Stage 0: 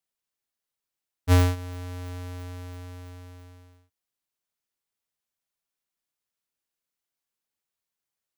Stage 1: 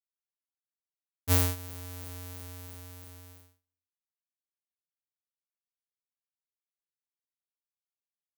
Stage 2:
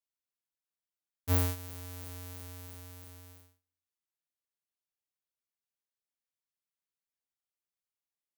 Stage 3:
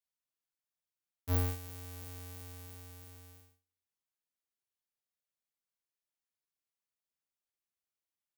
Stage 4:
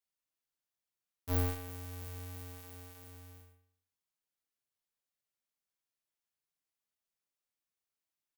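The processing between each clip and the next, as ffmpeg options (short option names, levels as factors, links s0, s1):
-af "agate=range=0.0224:threshold=0.00398:ratio=16:detection=peak,aemphasis=mode=production:type=75fm,volume=0.447"
-af "asoftclip=type=tanh:threshold=0.282,volume=0.794"
-filter_complex "[0:a]aeval=exprs='(tanh(10*val(0)+0.4)-tanh(0.4))/10':c=same,asplit=2[s0][s1];[s1]adelay=42,volume=0.447[s2];[s0][s2]amix=inputs=2:normalize=0,volume=0.794"
-af "flanger=delay=4.4:depth=5:regen=-59:speed=0.72:shape=triangular,aecho=1:1:78|156|234|312|390:0.178|0.0889|0.0445|0.0222|0.0111,volume=1.58"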